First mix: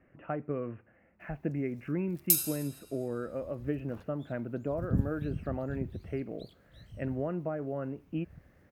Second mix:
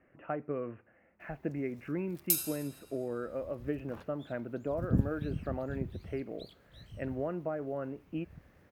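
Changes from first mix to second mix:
second sound +5.5 dB; master: add tone controls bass -6 dB, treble -4 dB

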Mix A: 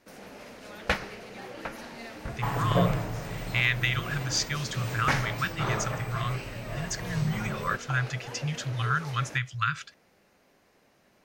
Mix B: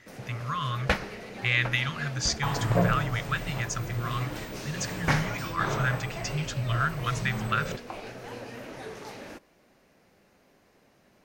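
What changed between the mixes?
speech: entry -2.10 s; first sound: add low shelf 460 Hz +4 dB

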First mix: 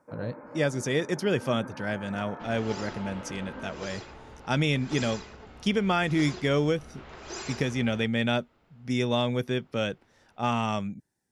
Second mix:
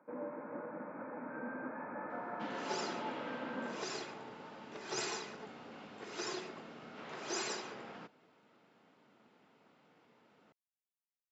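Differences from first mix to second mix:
speech: muted; master: add HPF 160 Hz 24 dB/oct

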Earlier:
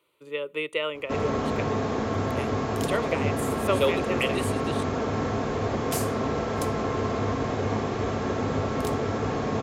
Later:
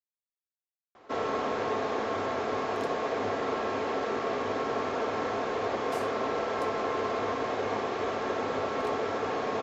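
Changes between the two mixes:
speech: muted; second sound -10.5 dB; master: add three-band isolator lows -18 dB, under 330 Hz, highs -12 dB, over 5800 Hz

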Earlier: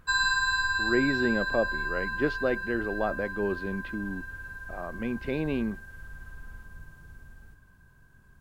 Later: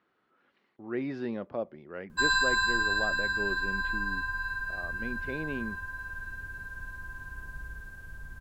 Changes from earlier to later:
speech -7.0 dB; background: entry +2.10 s

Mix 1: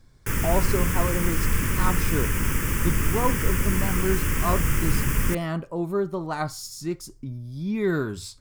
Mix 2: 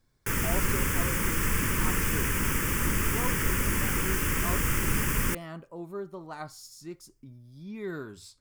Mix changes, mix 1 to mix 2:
speech -10.5 dB; master: add low shelf 160 Hz -7 dB

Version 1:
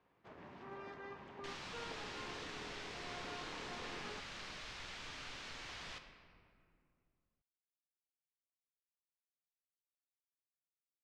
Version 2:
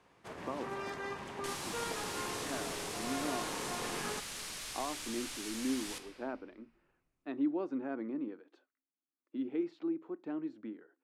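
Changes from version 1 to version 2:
speech: unmuted; first sound +8.5 dB; master: remove air absorption 190 m

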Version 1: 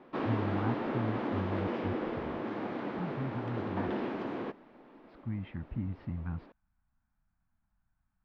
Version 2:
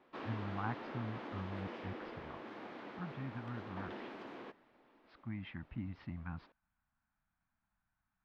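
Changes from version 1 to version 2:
background -9.5 dB; master: add tilt +2.5 dB/oct

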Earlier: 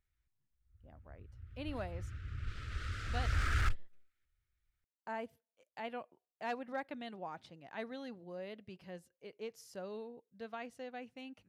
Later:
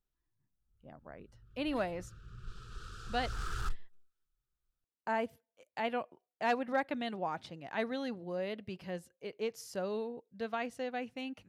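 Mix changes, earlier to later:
speech +8.0 dB; background: add fixed phaser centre 410 Hz, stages 8

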